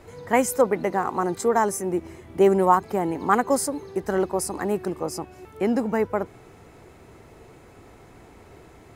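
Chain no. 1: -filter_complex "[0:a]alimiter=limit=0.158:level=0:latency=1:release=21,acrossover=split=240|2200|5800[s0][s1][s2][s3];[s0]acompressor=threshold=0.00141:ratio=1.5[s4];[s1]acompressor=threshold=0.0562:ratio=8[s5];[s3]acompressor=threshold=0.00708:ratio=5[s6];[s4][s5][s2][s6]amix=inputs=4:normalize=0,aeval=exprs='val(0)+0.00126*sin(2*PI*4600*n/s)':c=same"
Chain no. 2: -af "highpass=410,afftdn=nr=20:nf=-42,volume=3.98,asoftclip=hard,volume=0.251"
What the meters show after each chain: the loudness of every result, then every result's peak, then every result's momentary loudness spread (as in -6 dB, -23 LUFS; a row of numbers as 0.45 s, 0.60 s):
-31.0 LUFS, -26.0 LUFS; -16.5 dBFS, -12.0 dBFS; 20 LU, 11 LU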